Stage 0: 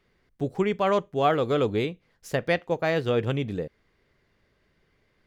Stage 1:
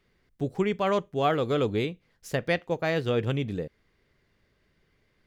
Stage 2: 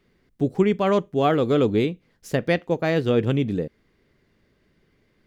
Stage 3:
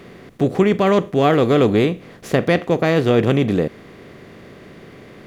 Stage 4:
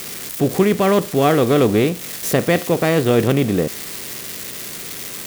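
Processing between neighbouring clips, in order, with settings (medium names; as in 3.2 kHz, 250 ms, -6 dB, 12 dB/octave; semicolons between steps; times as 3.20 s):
peaking EQ 790 Hz -3 dB 2.4 oct
peaking EQ 260 Hz +7 dB 1.7 oct; trim +2 dB
spectral levelling over time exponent 0.6; trim +2.5 dB
zero-crossing glitches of -17 dBFS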